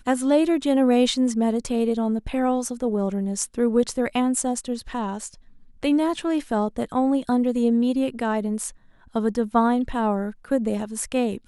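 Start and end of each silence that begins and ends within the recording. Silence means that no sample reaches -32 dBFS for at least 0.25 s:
5.28–5.83
8.7–9.15

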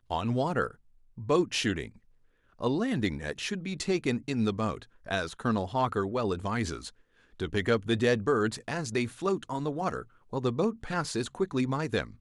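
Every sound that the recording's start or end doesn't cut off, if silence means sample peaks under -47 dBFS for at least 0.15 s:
1.17–1.97
2.59–4.85
5.05–6.9
7.4–10.04

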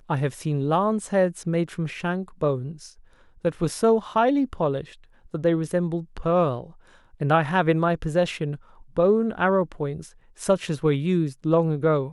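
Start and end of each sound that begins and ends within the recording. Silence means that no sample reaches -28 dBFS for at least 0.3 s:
3.45–4.81
5.34–6.61
7.21–8.55
8.97–10.01

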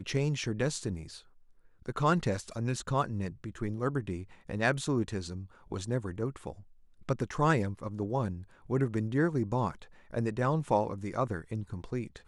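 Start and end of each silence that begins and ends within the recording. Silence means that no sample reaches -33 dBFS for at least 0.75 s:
1–1.89

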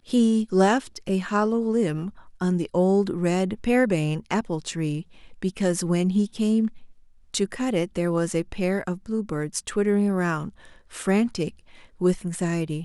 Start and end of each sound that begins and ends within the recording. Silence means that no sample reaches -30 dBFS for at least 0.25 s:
2.41–5.01
5.43–6.68
7.34–10.49
10.94–11.49

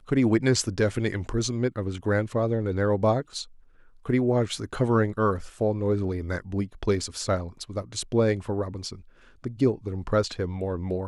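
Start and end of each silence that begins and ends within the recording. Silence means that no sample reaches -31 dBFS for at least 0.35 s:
3.42–4.06
8.93–9.44

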